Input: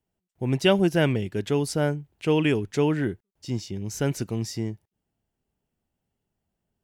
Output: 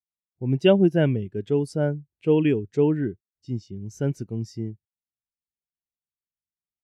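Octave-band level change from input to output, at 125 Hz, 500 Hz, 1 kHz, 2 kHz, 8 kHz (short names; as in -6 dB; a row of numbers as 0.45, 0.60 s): +1.0 dB, +2.0 dB, -4.5 dB, -4.5 dB, under -10 dB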